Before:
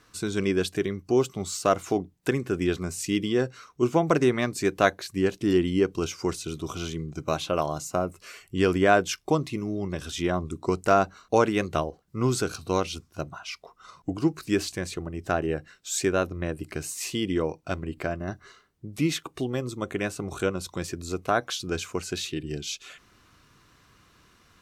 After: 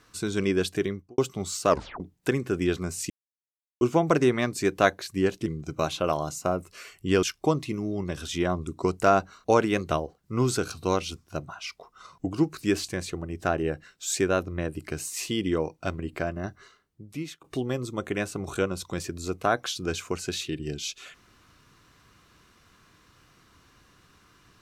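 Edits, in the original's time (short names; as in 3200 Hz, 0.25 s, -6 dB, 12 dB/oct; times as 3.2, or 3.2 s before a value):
0.86–1.18 studio fade out
1.69 tape stop 0.31 s
3.1–3.81 mute
5.46–6.95 cut
8.72–9.07 cut
18.22–19.28 fade out, to -17 dB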